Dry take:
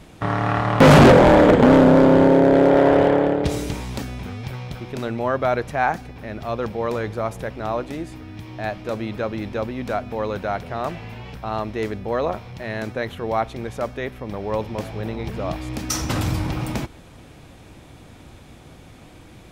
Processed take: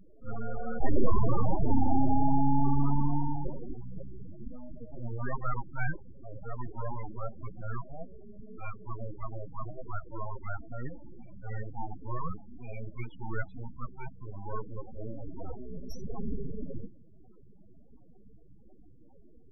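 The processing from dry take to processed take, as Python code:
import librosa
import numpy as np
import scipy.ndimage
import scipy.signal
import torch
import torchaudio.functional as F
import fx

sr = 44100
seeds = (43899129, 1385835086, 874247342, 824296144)

y = fx.hum_notches(x, sr, base_hz=50, count=5)
y = np.abs(y)
y = fx.spec_topn(y, sr, count=8)
y = fx.attack_slew(y, sr, db_per_s=250.0)
y = y * 10.0 ** (-5.0 / 20.0)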